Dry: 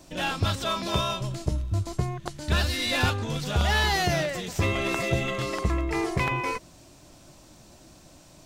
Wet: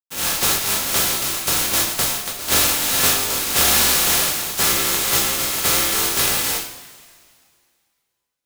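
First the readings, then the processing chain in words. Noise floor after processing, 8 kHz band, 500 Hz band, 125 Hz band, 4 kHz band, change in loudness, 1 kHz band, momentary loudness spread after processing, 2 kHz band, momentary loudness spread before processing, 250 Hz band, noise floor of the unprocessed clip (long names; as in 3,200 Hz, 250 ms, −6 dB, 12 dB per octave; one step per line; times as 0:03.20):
−76 dBFS, +21.5 dB, +1.0 dB, −7.0 dB, +11.0 dB, +10.5 dB, +3.5 dB, 6 LU, +5.5 dB, 7 LU, 0.0 dB, −52 dBFS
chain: compressing power law on the bin magnitudes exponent 0.1
bit reduction 6 bits
coupled-rooms reverb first 0.51 s, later 2.2 s, from −18 dB, DRR −4.5 dB
level +1.5 dB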